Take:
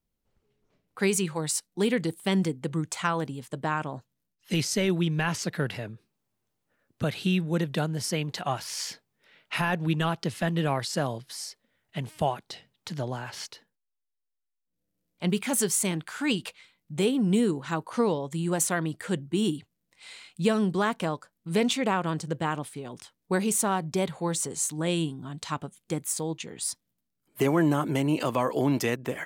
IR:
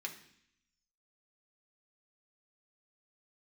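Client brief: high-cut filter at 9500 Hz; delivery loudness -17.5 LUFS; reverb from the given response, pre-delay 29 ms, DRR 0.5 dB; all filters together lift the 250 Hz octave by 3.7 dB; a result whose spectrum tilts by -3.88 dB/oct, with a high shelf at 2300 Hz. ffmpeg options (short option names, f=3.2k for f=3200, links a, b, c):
-filter_complex "[0:a]lowpass=9.5k,equalizer=f=250:t=o:g=5,highshelf=f=2.3k:g=8,asplit=2[a][b];[1:a]atrim=start_sample=2205,adelay=29[c];[b][c]afir=irnorm=-1:irlink=0,volume=0dB[d];[a][d]amix=inputs=2:normalize=0,volume=5.5dB"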